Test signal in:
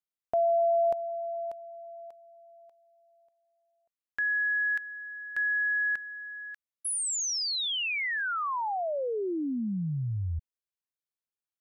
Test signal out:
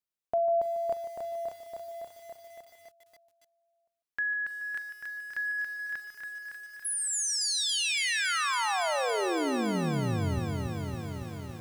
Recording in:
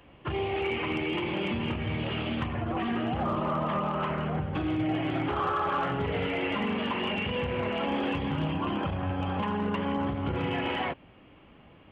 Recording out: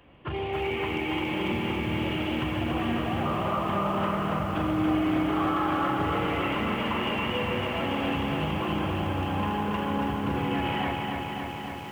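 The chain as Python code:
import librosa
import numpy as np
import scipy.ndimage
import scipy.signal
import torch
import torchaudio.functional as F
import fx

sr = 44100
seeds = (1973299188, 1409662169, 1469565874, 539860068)

y = fx.echo_multitap(x, sr, ms=(42, 148), db=(-17.0, -12.5))
y = fx.echo_crushed(y, sr, ms=280, feedback_pct=80, bits=9, wet_db=-4.0)
y = F.gain(torch.from_numpy(y), -1.0).numpy()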